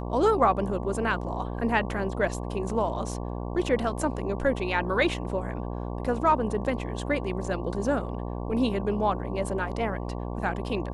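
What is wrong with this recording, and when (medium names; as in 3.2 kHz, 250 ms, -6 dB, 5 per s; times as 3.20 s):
buzz 60 Hz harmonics 19 -33 dBFS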